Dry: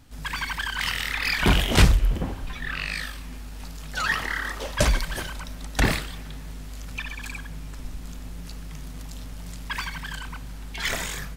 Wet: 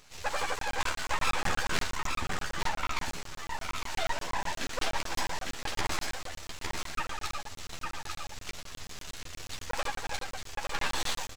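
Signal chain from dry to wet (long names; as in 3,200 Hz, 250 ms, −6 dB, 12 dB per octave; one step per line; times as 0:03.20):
spectral tilt +3 dB per octave
downward compressor 6 to 1, threshold −25 dBFS, peak gain reduction 12.5 dB
pitch shifter −11.5 semitones
half-wave rectification
double-tracking delay 12 ms −4 dB
on a send: single-tap delay 856 ms −4 dB
on the sum: regular buffer underruns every 0.12 s, samples 1,024, zero, from 0:00.59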